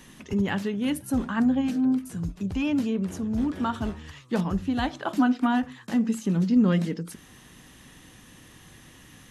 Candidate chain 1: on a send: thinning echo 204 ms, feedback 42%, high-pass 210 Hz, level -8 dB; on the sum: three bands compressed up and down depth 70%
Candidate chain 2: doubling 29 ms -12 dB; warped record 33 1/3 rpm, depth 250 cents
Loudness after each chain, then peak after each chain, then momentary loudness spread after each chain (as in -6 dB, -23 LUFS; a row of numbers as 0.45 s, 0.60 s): -27.0 LUFS, -26.0 LUFS; -13.0 dBFS, -11.0 dBFS; 13 LU, 10 LU